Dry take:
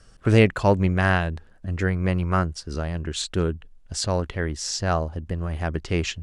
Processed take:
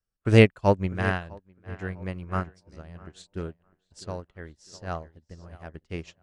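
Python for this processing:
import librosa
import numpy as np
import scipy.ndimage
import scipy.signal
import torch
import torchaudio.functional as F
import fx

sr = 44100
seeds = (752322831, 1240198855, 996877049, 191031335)

p1 = x + fx.echo_tape(x, sr, ms=654, feedback_pct=58, wet_db=-9.0, lp_hz=2500.0, drive_db=3.0, wow_cents=6, dry=0)
p2 = fx.upward_expand(p1, sr, threshold_db=-38.0, expansion=2.5)
y = p2 * librosa.db_to_amplitude(2.5)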